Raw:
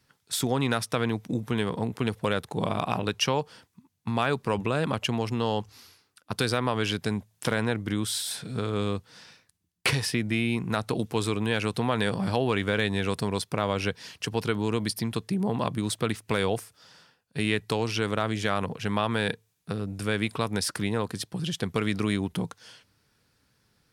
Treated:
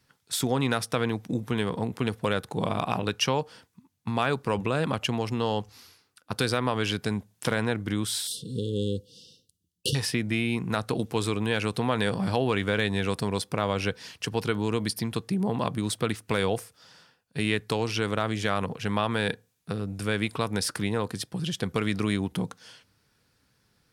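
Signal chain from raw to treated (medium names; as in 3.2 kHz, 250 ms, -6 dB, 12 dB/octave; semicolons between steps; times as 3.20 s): 8.27–9.95 s: brick-wall FIR band-stop 540–2700 Hz; on a send: reverberation RT60 0.30 s, pre-delay 3 ms, DRR 21.5 dB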